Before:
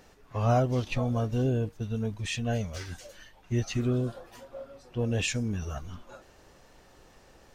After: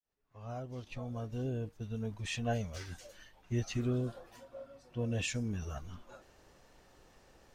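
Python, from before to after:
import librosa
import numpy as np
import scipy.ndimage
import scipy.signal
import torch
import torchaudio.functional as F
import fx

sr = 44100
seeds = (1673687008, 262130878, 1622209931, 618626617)

y = fx.fade_in_head(x, sr, length_s=2.43)
y = fx.dynamic_eq(y, sr, hz=880.0, q=0.96, threshold_db=-48.0, ratio=4.0, max_db=7, at=(2.1, 2.52), fade=0.02)
y = fx.notch_comb(y, sr, f0_hz=410.0, at=(4.33, 5.34))
y = F.gain(torch.from_numpy(y), -5.5).numpy()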